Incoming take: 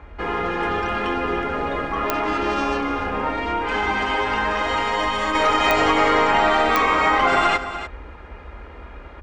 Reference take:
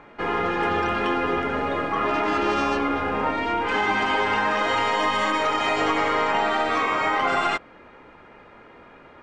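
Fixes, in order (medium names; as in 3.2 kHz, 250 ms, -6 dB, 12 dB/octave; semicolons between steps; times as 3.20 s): de-click; noise print and reduce 10 dB; inverse comb 295 ms -11.5 dB; trim 0 dB, from 5.35 s -4.5 dB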